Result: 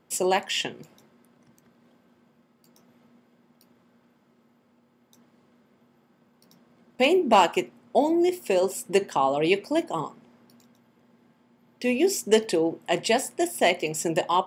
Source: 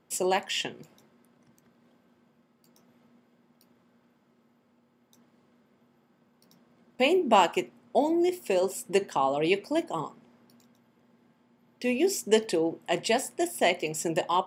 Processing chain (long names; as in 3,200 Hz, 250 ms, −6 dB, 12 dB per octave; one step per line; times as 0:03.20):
hard clipping −12 dBFS, distortion −28 dB
level +3 dB